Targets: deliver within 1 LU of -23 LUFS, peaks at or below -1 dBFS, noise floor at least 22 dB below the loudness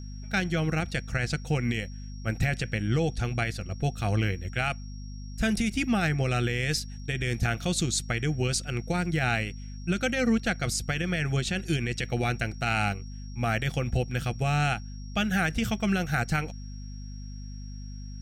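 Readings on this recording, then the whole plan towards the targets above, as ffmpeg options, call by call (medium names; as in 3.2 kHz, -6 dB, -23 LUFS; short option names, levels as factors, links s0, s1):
hum 50 Hz; highest harmonic 250 Hz; hum level -37 dBFS; steady tone 5.6 kHz; tone level -52 dBFS; loudness -28.5 LUFS; peak level -15.0 dBFS; loudness target -23.0 LUFS
-> -af "bandreject=f=50:t=h:w=4,bandreject=f=100:t=h:w=4,bandreject=f=150:t=h:w=4,bandreject=f=200:t=h:w=4,bandreject=f=250:t=h:w=4"
-af "bandreject=f=5600:w=30"
-af "volume=1.88"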